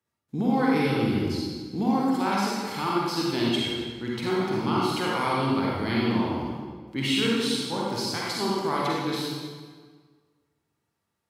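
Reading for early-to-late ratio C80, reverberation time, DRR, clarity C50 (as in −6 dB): −0.5 dB, 1.6 s, −5.5 dB, −3.5 dB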